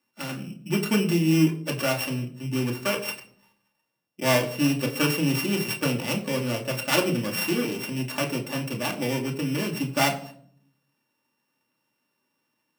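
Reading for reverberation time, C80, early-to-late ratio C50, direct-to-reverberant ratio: 0.60 s, 15.5 dB, 12.5 dB, -1.0 dB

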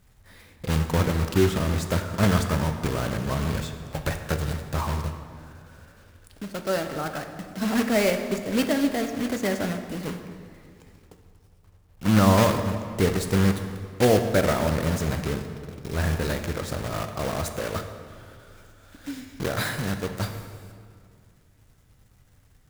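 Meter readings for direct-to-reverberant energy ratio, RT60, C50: 6.0 dB, 2.2 s, 7.5 dB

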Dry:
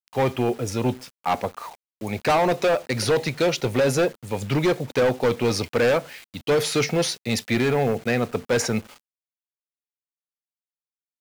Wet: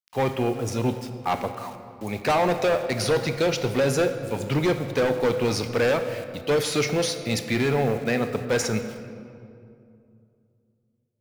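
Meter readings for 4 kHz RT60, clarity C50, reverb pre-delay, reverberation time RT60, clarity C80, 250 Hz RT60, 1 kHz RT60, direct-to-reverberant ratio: 1.4 s, 9.5 dB, 18 ms, 2.5 s, 10.0 dB, 3.1 s, 2.3 s, 8.5 dB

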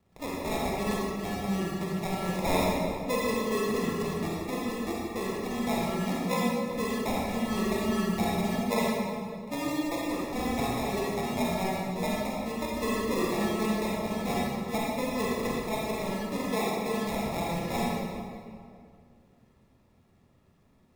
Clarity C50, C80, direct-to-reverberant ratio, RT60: -3.0 dB, -1.0 dB, -5.0 dB, 2.2 s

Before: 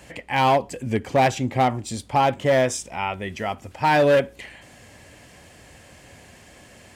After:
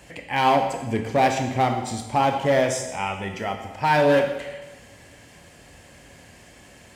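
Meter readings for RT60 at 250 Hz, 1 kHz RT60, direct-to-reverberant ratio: 1.1 s, 1.1 s, 4.0 dB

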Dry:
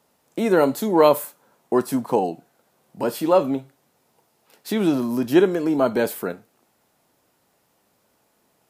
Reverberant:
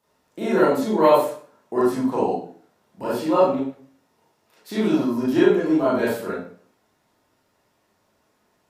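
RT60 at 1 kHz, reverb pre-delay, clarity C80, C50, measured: 0.45 s, 29 ms, 6.0 dB, 1.5 dB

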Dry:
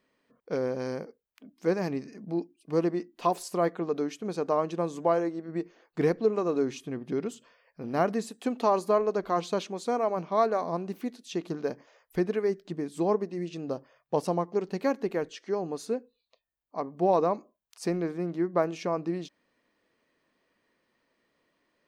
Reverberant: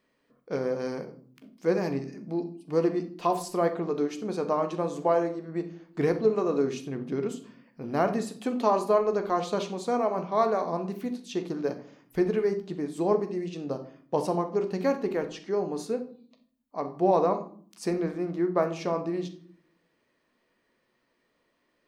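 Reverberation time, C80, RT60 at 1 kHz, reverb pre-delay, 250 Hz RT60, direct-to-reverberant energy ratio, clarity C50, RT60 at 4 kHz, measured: 0.55 s, 16.5 dB, 0.45 s, 14 ms, 0.90 s, 6.5 dB, 12.0 dB, 0.35 s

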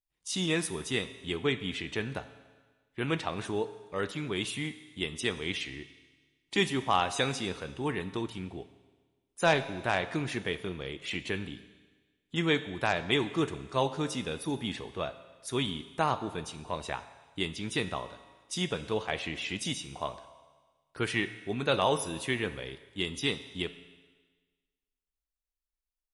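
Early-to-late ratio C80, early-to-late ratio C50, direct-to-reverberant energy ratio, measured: 14.5 dB, 13.5 dB, 11.0 dB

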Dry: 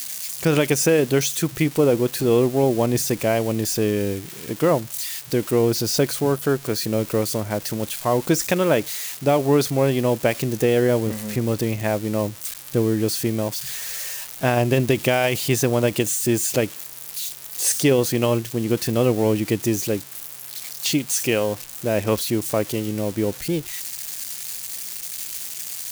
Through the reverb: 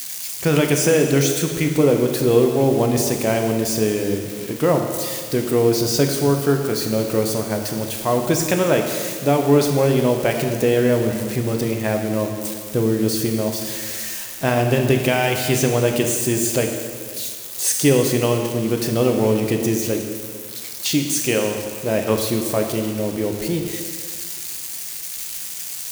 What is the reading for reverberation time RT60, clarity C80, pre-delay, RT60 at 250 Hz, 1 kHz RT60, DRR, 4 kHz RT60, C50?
2.0 s, 6.0 dB, 5 ms, 1.9 s, 2.0 s, 3.0 dB, 1.9 s, 5.0 dB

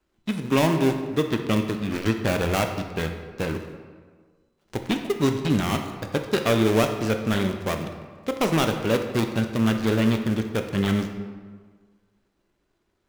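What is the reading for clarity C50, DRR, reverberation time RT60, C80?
7.0 dB, 5.0 dB, 1.6 s, 9.0 dB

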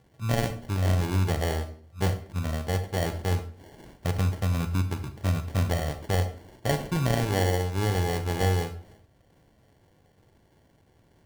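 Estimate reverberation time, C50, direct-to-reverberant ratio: 0.50 s, 11.5 dB, 9.0 dB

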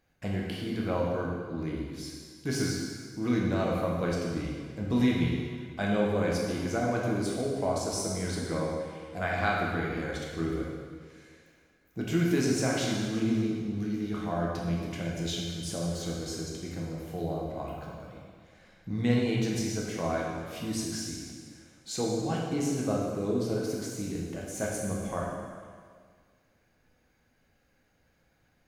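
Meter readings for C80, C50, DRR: 2.0 dB, 0.0 dB, -3.0 dB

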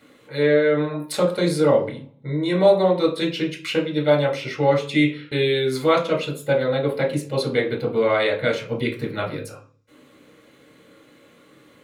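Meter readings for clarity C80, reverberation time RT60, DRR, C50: 15.5 dB, 0.45 s, -0.5 dB, 10.0 dB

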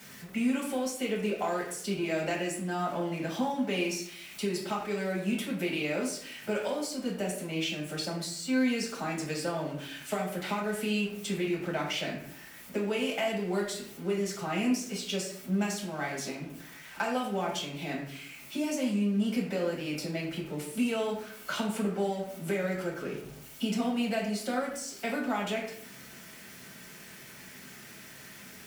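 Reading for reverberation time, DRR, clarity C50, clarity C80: 0.60 s, -4.0 dB, 5.0 dB, 8.0 dB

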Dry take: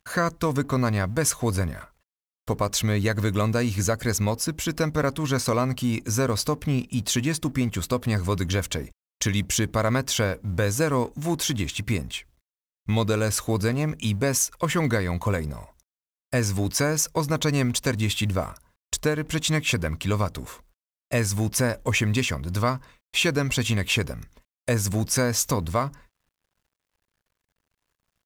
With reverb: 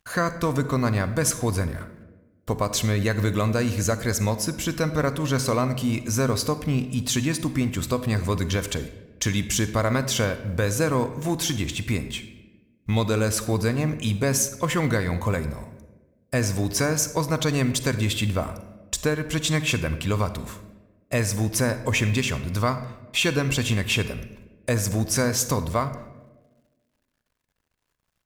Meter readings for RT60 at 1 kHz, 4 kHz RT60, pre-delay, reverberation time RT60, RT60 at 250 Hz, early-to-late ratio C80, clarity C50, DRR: 1.0 s, 0.70 s, 35 ms, 1.2 s, 1.6 s, 13.5 dB, 12.0 dB, 11.0 dB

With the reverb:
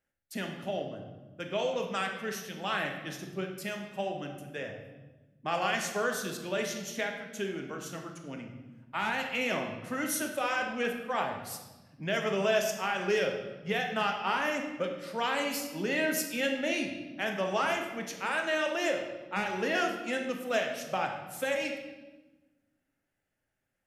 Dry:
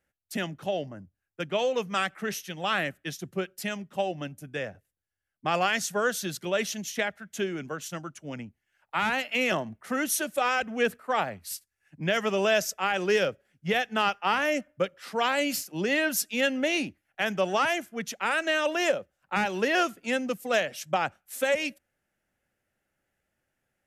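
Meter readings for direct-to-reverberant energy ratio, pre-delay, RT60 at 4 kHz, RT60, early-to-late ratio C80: 2.0 dB, 3 ms, 0.95 s, 1.2 s, 7.5 dB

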